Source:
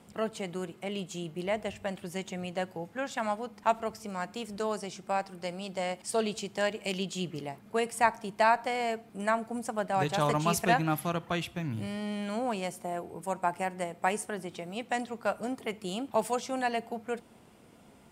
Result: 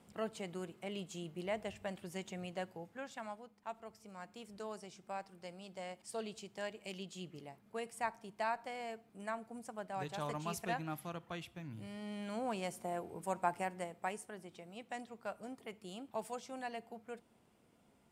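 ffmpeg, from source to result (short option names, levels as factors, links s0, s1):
-af "volume=2.24,afade=t=out:st=2.44:d=1.15:silence=0.251189,afade=t=in:st=3.59:d=0.92:silence=0.473151,afade=t=in:st=11.78:d=1.03:silence=0.398107,afade=t=out:st=13.47:d=0.71:silence=0.398107"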